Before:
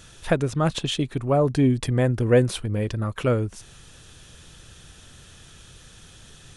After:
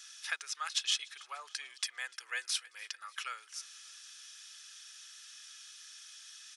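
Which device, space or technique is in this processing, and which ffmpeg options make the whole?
headphones lying on a table: -af "highpass=f=1.4k:w=0.5412,highpass=f=1.4k:w=1.3066,equalizer=f=5.4k:t=o:w=0.52:g=10.5,aecho=1:1:2.4:0.3,aecho=1:1:295|590|885|1180:0.0668|0.0368|0.0202|0.0111,volume=-5dB"

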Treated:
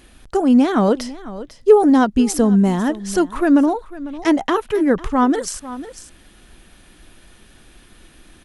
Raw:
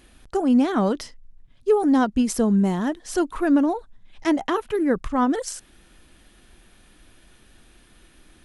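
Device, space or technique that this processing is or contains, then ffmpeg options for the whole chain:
ducked delay: -filter_complex "[0:a]asettb=1/sr,asplit=3[a][b][c];[a]atrim=end=0.884[d];[b]atrim=start=0.88:end=1.9,asetpts=PTS-STARTPTS,afade=t=in:d=0.004:c=qsin,afade=t=out:st=1.016:d=0.004:c=qsin,equalizer=f=570:w=1.5:g=6[e];[c]atrim=start=1.896[f];[d][e]acrossfade=d=0.004:c1=hsin:c2=qsin[g];[g][f]acrossfade=d=0.004:c1=qsin:c2=hsin,asplit=3[h][i][j];[i]adelay=499,volume=-6.5dB[k];[j]apad=whole_len=394615[l];[k][l]sidechaincompress=threshold=-30dB:ratio=6:attack=29:release=1310[m];[h][m]amix=inputs=2:normalize=0,volume=5dB"

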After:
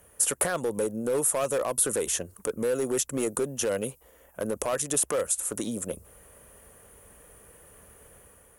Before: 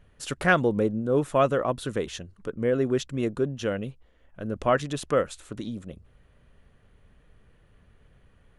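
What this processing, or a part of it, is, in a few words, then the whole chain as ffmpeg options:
FM broadcast chain: -filter_complex "[0:a]highpass=47,equalizer=f=125:t=o:w=1:g=-4,equalizer=f=500:t=o:w=1:g=9,equalizer=f=1k:t=o:w=1:g=6,equalizer=f=4k:t=o:w=1:g=-11,dynaudnorm=f=120:g=7:m=4dB,acrossover=split=150|3000[a][b][c];[a]acompressor=threshold=-42dB:ratio=4[d];[b]acompressor=threshold=-22dB:ratio=4[e];[c]acompressor=threshold=-48dB:ratio=4[f];[d][e][f]amix=inputs=3:normalize=0,aemphasis=mode=production:type=75fm,alimiter=limit=-17.5dB:level=0:latency=1:release=26,asoftclip=type=hard:threshold=-21dB,lowpass=f=15k:w=0.5412,lowpass=f=15k:w=1.3066,aemphasis=mode=production:type=75fm"

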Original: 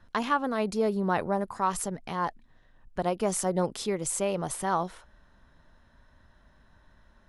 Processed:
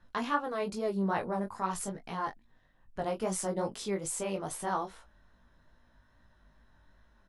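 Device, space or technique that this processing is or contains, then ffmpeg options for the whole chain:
double-tracked vocal: -filter_complex "[0:a]asplit=2[a][b];[b]adelay=21,volume=-10.5dB[c];[a][c]amix=inputs=2:normalize=0,flanger=delay=16.5:depth=4:speed=2.4,volume=-2dB"

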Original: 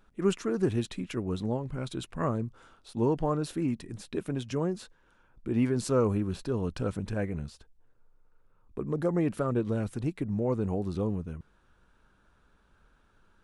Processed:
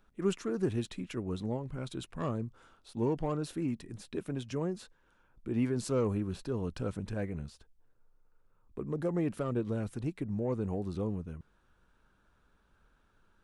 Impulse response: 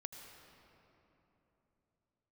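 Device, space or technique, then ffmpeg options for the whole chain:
one-band saturation: -filter_complex "[0:a]acrossover=split=590|2900[a][b][c];[b]asoftclip=type=tanh:threshold=-30.5dB[d];[a][d][c]amix=inputs=3:normalize=0,volume=-4dB"

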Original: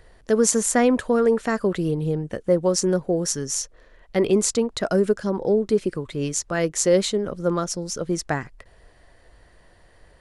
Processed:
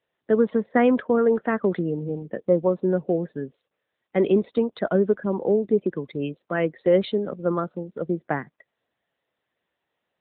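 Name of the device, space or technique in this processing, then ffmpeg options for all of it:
mobile call with aggressive noise cancelling: -af "highpass=f=150:w=0.5412,highpass=f=150:w=1.3066,afftdn=nr=26:nf=-37" -ar 8000 -c:a libopencore_amrnb -b:a 10200

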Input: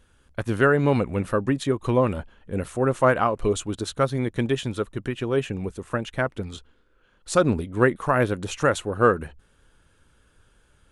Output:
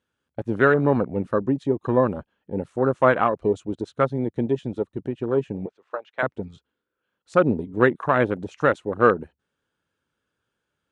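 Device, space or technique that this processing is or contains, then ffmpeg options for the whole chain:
over-cleaned archive recording: -filter_complex "[0:a]asettb=1/sr,asplit=3[a][b][c];[a]atrim=end=5.664[d];[b]atrim=start=5.66:end=6.23,asetpts=PTS-STARTPTS,afade=t=in:d=0.004:c=qsin,afade=t=out:st=0.566:d=0.004:c=qsin,acrossover=split=440 4900:gain=0.0891 1 0.0708[e][f][g];[e][f][g]amix=inputs=3:normalize=0[h];[c]atrim=start=6.226[i];[d][h]acrossfade=d=0.004:c1=hsin:c2=qsin[j];[j][i]acrossfade=d=0.004:c1=qsin:c2=hsin,highpass=140,lowpass=6.6k,afwtdn=0.0355,volume=1.5dB"

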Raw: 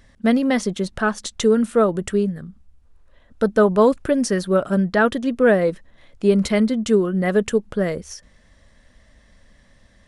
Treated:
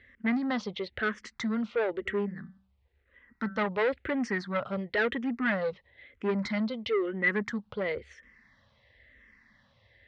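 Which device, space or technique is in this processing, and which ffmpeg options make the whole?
barber-pole phaser into a guitar amplifier: -filter_complex "[0:a]asplit=3[a][b][c];[a]afade=t=out:st=2.05:d=0.02[d];[b]bandreject=f=192.6:t=h:w=4,bandreject=f=385.2:t=h:w=4,bandreject=f=577.8:t=h:w=4,bandreject=f=770.4:t=h:w=4,bandreject=f=963:t=h:w=4,bandreject=f=1.1556k:t=h:w=4,bandreject=f=1.3482k:t=h:w=4,bandreject=f=1.5408k:t=h:w=4,bandreject=f=1.7334k:t=h:w=4,bandreject=f=1.926k:t=h:w=4,bandreject=f=2.1186k:t=h:w=4,bandreject=f=2.3112k:t=h:w=4,afade=t=in:st=2.05:d=0.02,afade=t=out:st=3.66:d=0.02[e];[c]afade=t=in:st=3.66:d=0.02[f];[d][e][f]amix=inputs=3:normalize=0,asplit=2[g][h];[h]afreqshift=-0.99[i];[g][i]amix=inputs=2:normalize=1,asoftclip=type=tanh:threshold=-18.5dB,highpass=82,equalizer=f=170:t=q:w=4:g=-10,equalizer=f=310:t=q:w=4:g=-6,equalizer=f=650:t=q:w=4:g=-6,equalizer=f=2k:t=q:w=4:g=10,lowpass=f=4.3k:w=0.5412,lowpass=f=4.3k:w=1.3066,volume=-3dB"

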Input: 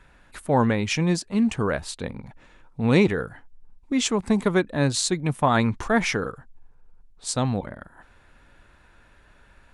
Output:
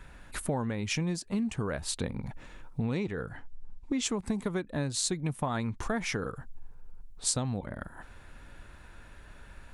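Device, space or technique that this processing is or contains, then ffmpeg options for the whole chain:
ASMR close-microphone chain: -filter_complex "[0:a]asettb=1/sr,asplit=3[a][b][c];[a]atrim=end=2.824[d];[b]atrim=start=2.82:end=4.03,asetpts=PTS-STARTPTS,afade=t=in:d=0.004:c=qsin,afade=t=out:st=1.206:d=0.004:c=qsin,lowpass=7.5k[e];[c]atrim=start=4.026[f];[d][e]acrossfade=d=0.004:c1=hsin:c2=qsin[g];[g][f]acrossfade=d=0.004:c1=qsin:c2=hsin,lowshelf=f=220:g=5,acompressor=threshold=-30dB:ratio=8,highshelf=f=7.9k:g=7.5,volume=1.5dB"

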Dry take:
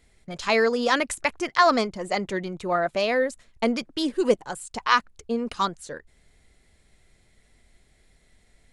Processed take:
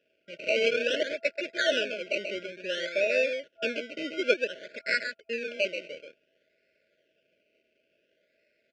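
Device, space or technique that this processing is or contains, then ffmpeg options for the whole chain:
circuit-bent sampling toy: -af "aecho=1:1:133:0.473,acrusher=samples=20:mix=1:aa=0.000001:lfo=1:lforange=12:lforate=0.56,highpass=570,equalizer=f=700:t=q:w=4:g=5,equalizer=f=1.2k:t=q:w=4:g=-8,equalizer=f=1.8k:t=q:w=4:g=-8,equalizer=f=2.6k:t=q:w=4:g=8,equalizer=f=3.9k:t=q:w=4:g=-10,lowpass=f=4.4k:w=0.5412,lowpass=f=4.4k:w=1.3066,afftfilt=real='re*(1-between(b*sr/4096,660,1400))':imag='im*(1-between(b*sr/4096,660,1400))':win_size=4096:overlap=0.75"

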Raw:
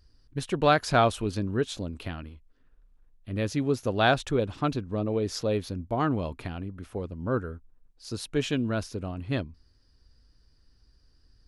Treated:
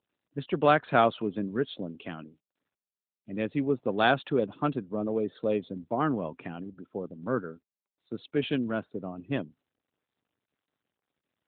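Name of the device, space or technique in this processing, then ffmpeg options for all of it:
mobile call with aggressive noise cancelling: -filter_complex "[0:a]asplit=3[a][b][c];[a]afade=t=out:st=3.35:d=0.02[d];[b]bandreject=f=610:w=12,afade=t=in:st=3.35:d=0.02,afade=t=out:st=4.13:d=0.02[e];[c]afade=t=in:st=4.13:d=0.02[f];[d][e][f]amix=inputs=3:normalize=0,highpass=f=150:w=0.5412,highpass=f=150:w=1.3066,afftdn=nr=24:nf=-47" -ar 8000 -c:a libopencore_amrnb -b:a 12200

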